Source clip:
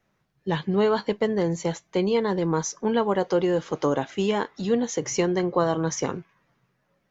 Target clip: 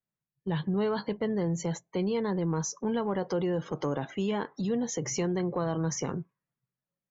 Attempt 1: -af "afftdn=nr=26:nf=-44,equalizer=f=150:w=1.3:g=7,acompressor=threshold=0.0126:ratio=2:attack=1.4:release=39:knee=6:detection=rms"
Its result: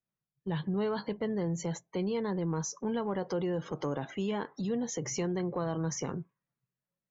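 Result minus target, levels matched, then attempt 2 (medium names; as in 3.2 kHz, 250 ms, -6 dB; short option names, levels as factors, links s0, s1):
compression: peak gain reduction +3 dB
-af "afftdn=nr=26:nf=-44,equalizer=f=150:w=1.3:g=7,acompressor=threshold=0.0251:ratio=2:attack=1.4:release=39:knee=6:detection=rms"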